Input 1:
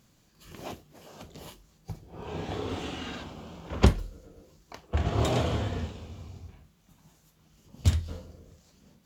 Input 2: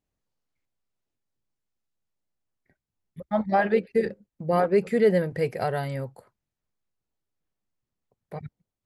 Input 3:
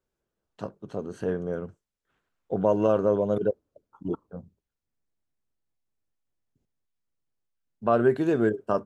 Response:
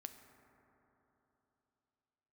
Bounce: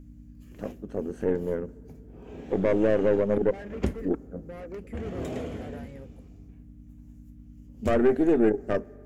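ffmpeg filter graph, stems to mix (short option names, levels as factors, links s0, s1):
-filter_complex "[0:a]volume=0.282,asplit=2[s0][s1];[s1]volume=0.376[s2];[1:a]asoftclip=type=tanh:threshold=0.0473,volume=0.211[s3];[2:a]aeval=exprs='(tanh(14.1*val(0)+0.8)-tanh(0.8))/14.1':c=same,aeval=exprs='val(0)+0.00251*(sin(2*PI*60*n/s)+sin(2*PI*2*60*n/s)/2+sin(2*PI*3*60*n/s)/3+sin(2*PI*4*60*n/s)/4+sin(2*PI*5*60*n/s)/5)':c=same,volume=1.19,asplit=2[s4][s5];[s5]volume=0.355[s6];[3:a]atrim=start_sample=2205[s7];[s2][s6]amix=inputs=2:normalize=0[s8];[s8][s7]afir=irnorm=-1:irlink=0[s9];[s0][s3][s4][s9]amix=inputs=4:normalize=0,equalizer=f=125:t=o:w=1:g=-5,equalizer=f=250:t=o:w=1:g=8,equalizer=f=500:t=o:w=1:g=4,equalizer=f=1000:t=o:w=1:g=-7,equalizer=f=2000:t=o:w=1:g=4,equalizer=f=4000:t=o:w=1:g=-9,aeval=exprs='val(0)+0.00355*(sin(2*PI*50*n/s)+sin(2*PI*2*50*n/s)/2+sin(2*PI*3*50*n/s)/3+sin(2*PI*4*50*n/s)/4+sin(2*PI*5*50*n/s)/5)':c=same"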